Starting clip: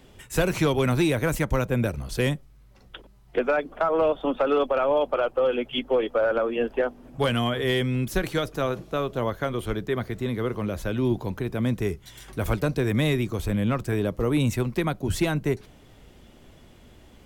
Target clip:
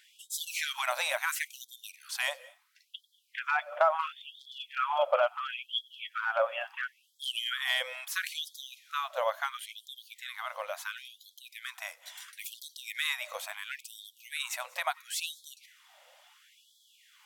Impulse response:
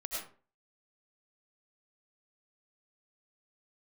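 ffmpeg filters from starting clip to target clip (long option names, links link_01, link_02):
-filter_complex "[0:a]asplit=2[link_01][link_02];[1:a]atrim=start_sample=2205,highshelf=frequency=8200:gain=6,adelay=93[link_03];[link_02][link_03]afir=irnorm=-1:irlink=0,volume=-23.5dB[link_04];[link_01][link_04]amix=inputs=2:normalize=0,afftfilt=real='re*gte(b*sr/1024,500*pow(3200/500,0.5+0.5*sin(2*PI*0.73*pts/sr)))':imag='im*gte(b*sr/1024,500*pow(3200/500,0.5+0.5*sin(2*PI*0.73*pts/sr)))':win_size=1024:overlap=0.75"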